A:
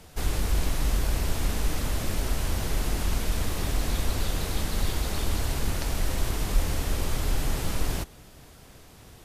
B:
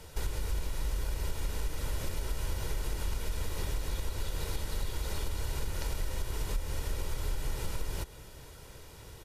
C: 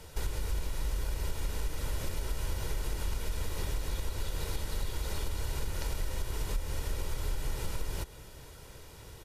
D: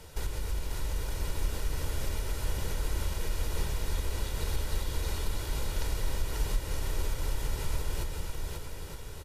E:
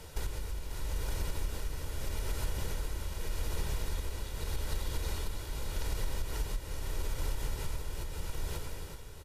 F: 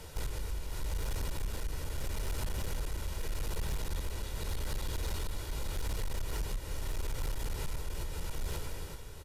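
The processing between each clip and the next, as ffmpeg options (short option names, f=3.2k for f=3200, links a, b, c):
-af "aecho=1:1:2.1:0.48,acompressor=threshold=-28dB:ratio=6,volume=-1dB"
-af anull
-af "aecho=1:1:540|918|1183|1368|1497:0.631|0.398|0.251|0.158|0.1"
-af "tremolo=f=0.82:d=0.54,acompressor=threshold=-29dB:ratio=6,volume=1dB"
-af "volume=30.5dB,asoftclip=hard,volume=-30.5dB,volume=1dB"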